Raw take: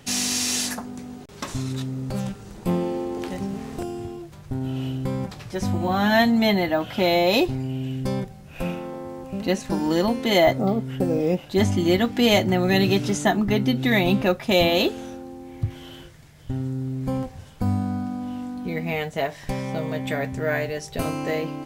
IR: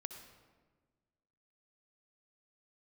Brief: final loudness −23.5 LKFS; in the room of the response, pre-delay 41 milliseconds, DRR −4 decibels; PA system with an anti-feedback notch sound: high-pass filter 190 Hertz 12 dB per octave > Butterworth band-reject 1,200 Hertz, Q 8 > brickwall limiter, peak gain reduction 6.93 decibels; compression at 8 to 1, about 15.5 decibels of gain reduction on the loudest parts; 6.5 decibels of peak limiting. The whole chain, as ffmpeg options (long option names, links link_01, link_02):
-filter_complex "[0:a]acompressor=threshold=-30dB:ratio=8,alimiter=level_in=1dB:limit=-24dB:level=0:latency=1,volume=-1dB,asplit=2[link_01][link_02];[1:a]atrim=start_sample=2205,adelay=41[link_03];[link_02][link_03]afir=irnorm=-1:irlink=0,volume=7dB[link_04];[link_01][link_04]amix=inputs=2:normalize=0,highpass=190,asuperstop=centerf=1200:order=8:qfactor=8,volume=10dB,alimiter=limit=-14dB:level=0:latency=1"